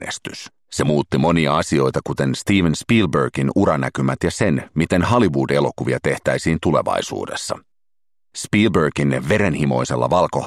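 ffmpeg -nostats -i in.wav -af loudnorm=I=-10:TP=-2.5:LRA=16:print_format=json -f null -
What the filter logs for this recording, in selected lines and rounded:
"input_i" : "-18.6",
"input_tp" : "-2.9",
"input_lra" : "2.3",
"input_thresh" : "-29.0",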